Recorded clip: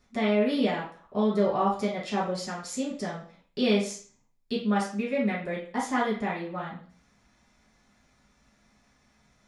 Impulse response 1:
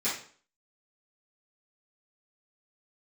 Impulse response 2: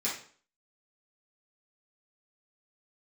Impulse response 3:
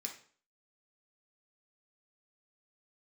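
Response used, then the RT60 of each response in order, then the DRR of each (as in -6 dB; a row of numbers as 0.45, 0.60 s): 2; 0.45, 0.45, 0.45 s; -13.5, -8.5, 1.0 dB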